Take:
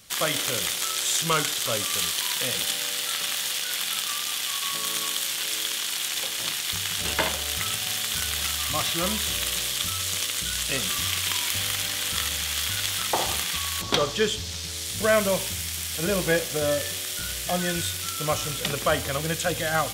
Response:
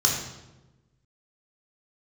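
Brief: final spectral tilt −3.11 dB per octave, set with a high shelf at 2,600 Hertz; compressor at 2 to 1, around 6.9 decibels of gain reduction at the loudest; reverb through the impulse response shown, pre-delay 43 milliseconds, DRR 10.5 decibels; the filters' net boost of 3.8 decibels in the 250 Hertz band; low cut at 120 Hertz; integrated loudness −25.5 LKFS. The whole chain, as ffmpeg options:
-filter_complex "[0:a]highpass=120,equalizer=frequency=250:width_type=o:gain=6.5,highshelf=frequency=2600:gain=-6.5,acompressor=threshold=-29dB:ratio=2,asplit=2[link_01][link_02];[1:a]atrim=start_sample=2205,adelay=43[link_03];[link_02][link_03]afir=irnorm=-1:irlink=0,volume=-23dB[link_04];[link_01][link_04]amix=inputs=2:normalize=0,volume=4.5dB"

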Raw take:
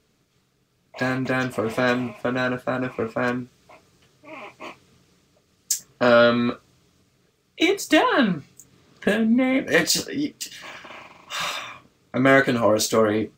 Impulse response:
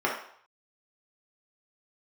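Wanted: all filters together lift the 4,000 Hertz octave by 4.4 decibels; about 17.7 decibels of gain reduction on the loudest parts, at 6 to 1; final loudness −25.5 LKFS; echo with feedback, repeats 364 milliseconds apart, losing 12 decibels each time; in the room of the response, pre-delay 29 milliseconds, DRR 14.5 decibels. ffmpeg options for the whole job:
-filter_complex "[0:a]equalizer=frequency=4000:width_type=o:gain=5.5,acompressor=threshold=-31dB:ratio=6,aecho=1:1:364|728|1092:0.251|0.0628|0.0157,asplit=2[link_01][link_02];[1:a]atrim=start_sample=2205,adelay=29[link_03];[link_02][link_03]afir=irnorm=-1:irlink=0,volume=-27.5dB[link_04];[link_01][link_04]amix=inputs=2:normalize=0,volume=9dB"

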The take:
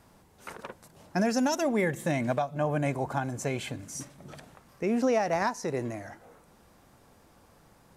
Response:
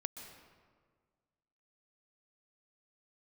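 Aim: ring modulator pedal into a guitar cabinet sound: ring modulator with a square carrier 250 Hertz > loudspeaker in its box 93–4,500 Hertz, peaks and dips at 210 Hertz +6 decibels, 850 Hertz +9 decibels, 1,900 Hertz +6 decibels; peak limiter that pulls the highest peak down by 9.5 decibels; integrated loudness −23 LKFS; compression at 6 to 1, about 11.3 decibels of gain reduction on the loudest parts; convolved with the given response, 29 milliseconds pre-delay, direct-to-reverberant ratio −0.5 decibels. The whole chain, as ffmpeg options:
-filter_complex "[0:a]acompressor=threshold=-35dB:ratio=6,alimiter=level_in=7.5dB:limit=-24dB:level=0:latency=1,volume=-7.5dB,asplit=2[link_01][link_02];[1:a]atrim=start_sample=2205,adelay=29[link_03];[link_02][link_03]afir=irnorm=-1:irlink=0,volume=2dB[link_04];[link_01][link_04]amix=inputs=2:normalize=0,aeval=exprs='val(0)*sgn(sin(2*PI*250*n/s))':channel_layout=same,highpass=93,equalizer=frequency=210:width_type=q:width=4:gain=6,equalizer=frequency=850:width_type=q:width=4:gain=9,equalizer=frequency=1900:width_type=q:width=4:gain=6,lowpass=frequency=4500:width=0.5412,lowpass=frequency=4500:width=1.3066,volume=14dB"

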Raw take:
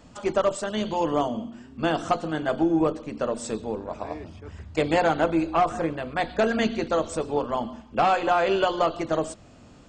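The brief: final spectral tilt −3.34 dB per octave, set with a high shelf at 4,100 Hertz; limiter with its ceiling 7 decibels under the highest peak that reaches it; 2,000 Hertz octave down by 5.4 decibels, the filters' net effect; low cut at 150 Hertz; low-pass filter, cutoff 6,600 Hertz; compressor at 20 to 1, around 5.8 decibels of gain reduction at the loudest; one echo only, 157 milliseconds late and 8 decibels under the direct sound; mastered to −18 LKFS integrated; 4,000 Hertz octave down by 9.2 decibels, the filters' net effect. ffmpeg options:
ffmpeg -i in.wav -af "highpass=150,lowpass=6600,equalizer=frequency=2000:width_type=o:gain=-4.5,equalizer=frequency=4000:width_type=o:gain=-6.5,highshelf=frequency=4100:gain=-7.5,acompressor=threshold=-23dB:ratio=20,alimiter=limit=-20.5dB:level=0:latency=1,aecho=1:1:157:0.398,volume=13dB" out.wav

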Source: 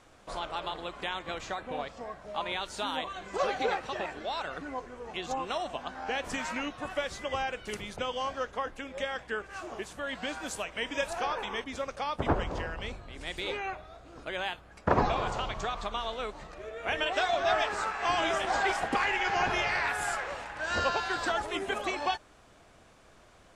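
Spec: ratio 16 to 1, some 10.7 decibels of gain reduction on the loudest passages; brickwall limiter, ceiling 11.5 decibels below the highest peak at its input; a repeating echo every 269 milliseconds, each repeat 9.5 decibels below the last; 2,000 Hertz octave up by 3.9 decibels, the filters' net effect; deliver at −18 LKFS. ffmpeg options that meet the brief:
ffmpeg -i in.wav -af "equalizer=frequency=2000:width_type=o:gain=5,acompressor=threshold=-30dB:ratio=16,alimiter=level_in=6dB:limit=-24dB:level=0:latency=1,volume=-6dB,aecho=1:1:269|538|807|1076:0.335|0.111|0.0365|0.012,volume=21dB" out.wav

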